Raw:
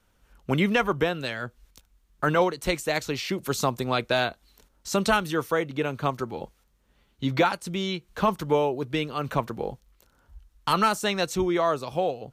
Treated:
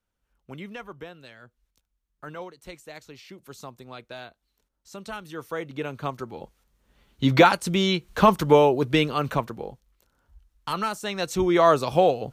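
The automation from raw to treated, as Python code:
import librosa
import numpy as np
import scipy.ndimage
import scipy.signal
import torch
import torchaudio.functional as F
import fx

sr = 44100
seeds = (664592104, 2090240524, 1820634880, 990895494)

y = fx.gain(x, sr, db=fx.line((5.02, -16.0), (5.71, -4.0), (6.43, -4.0), (7.32, 6.5), (9.07, 6.5), (9.7, -5.5), (11.04, -5.5), (11.68, 7.0)))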